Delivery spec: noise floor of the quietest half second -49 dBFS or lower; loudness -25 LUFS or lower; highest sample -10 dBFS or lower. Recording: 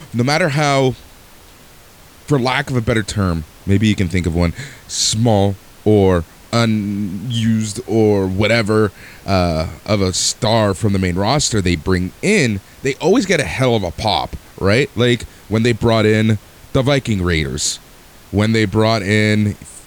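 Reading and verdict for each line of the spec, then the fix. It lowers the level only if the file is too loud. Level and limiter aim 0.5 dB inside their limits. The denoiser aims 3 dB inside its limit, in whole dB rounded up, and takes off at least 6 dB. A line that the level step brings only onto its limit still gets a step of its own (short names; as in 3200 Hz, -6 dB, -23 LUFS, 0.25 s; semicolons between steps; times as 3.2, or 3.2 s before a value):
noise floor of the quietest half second -43 dBFS: fail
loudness -16.5 LUFS: fail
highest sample -2.5 dBFS: fail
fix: gain -9 dB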